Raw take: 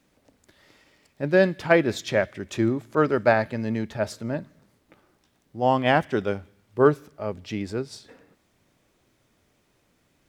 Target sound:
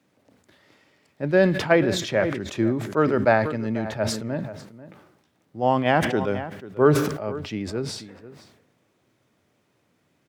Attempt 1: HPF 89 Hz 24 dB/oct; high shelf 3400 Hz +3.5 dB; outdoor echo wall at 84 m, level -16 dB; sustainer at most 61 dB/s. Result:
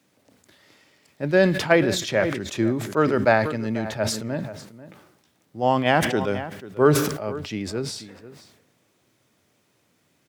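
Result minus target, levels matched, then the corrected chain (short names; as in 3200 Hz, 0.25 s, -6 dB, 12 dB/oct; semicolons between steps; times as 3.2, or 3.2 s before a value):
8000 Hz band +4.0 dB
HPF 89 Hz 24 dB/oct; high shelf 3400 Hz -5.5 dB; outdoor echo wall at 84 m, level -16 dB; sustainer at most 61 dB/s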